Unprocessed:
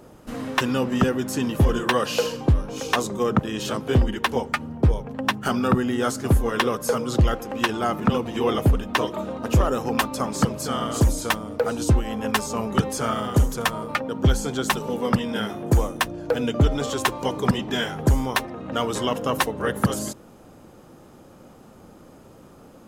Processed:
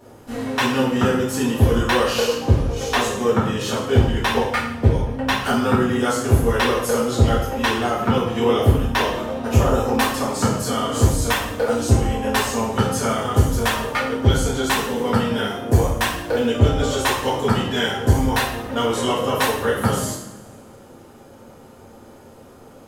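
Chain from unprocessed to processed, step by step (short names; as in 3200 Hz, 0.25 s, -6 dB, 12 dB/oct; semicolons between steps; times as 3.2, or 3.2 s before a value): two-slope reverb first 0.59 s, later 2 s, DRR -9 dB; gain -5 dB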